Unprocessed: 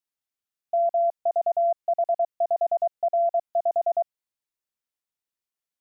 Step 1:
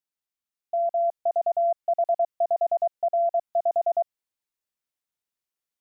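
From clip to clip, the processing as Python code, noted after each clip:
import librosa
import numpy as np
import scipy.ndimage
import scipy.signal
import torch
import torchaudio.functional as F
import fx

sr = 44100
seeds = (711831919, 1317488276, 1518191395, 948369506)

y = fx.rider(x, sr, range_db=10, speed_s=0.5)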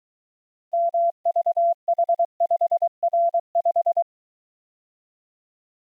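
y = fx.hpss(x, sr, part='harmonic', gain_db=3)
y = fx.quant_dither(y, sr, seeds[0], bits=12, dither='none')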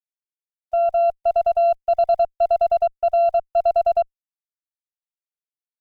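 y = fx.cheby_harmonics(x, sr, harmonics=(2, 6), levels_db=(-29, -31), full_scale_db=-14.0)
y = y * 10.0 ** (3.0 / 20.0)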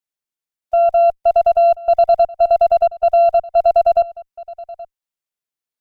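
y = x + 10.0 ** (-20.0 / 20.0) * np.pad(x, (int(825 * sr / 1000.0), 0))[:len(x)]
y = y * 10.0 ** (5.5 / 20.0)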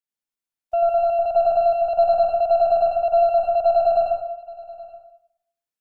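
y = fx.rev_plate(x, sr, seeds[1], rt60_s=0.69, hf_ratio=0.7, predelay_ms=80, drr_db=-3.0)
y = y * 10.0 ** (-7.0 / 20.0)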